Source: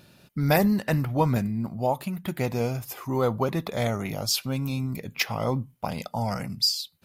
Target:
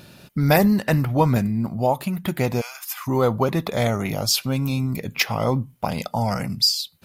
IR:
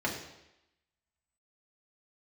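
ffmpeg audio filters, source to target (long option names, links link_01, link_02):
-filter_complex "[0:a]asplit=3[link_01][link_02][link_03];[link_01]afade=type=out:start_time=2.6:duration=0.02[link_04];[link_02]highpass=frequency=1100:width=0.5412,highpass=frequency=1100:width=1.3066,afade=type=in:start_time=2.6:duration=0.02,afade=type=out:start_time=3.06:duration=0.02[link_05];[link_03]afade=type=in:start_time=3.06:duration=0.02[link_06];[link_04][link_05][link_06]amix=inputs=3:normalize=0,asplit=2[link_07][link_08];[link_08]acompressor=threshold=-36dB:ratio=6,volume=-2dB[link_09];[link_07][link_09]amix=inputs=2:normalize=0,volume=3.5dB"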